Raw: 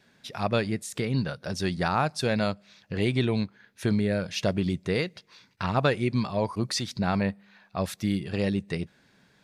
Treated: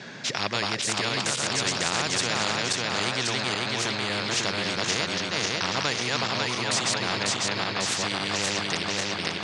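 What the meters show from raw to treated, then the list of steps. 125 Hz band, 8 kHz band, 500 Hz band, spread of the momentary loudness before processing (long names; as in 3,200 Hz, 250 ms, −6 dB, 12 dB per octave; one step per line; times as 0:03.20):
−6.5 dB, +13.5 dB, −2.5 dB, 9 LU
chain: feedback delay that plays each chunk backwards 273 ms, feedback 65%, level −1.5 dB
elliptic band-pass filter 120–6,600 Hz, stop band 40 dB
every bin compressed towards the loudest bin 4 to 1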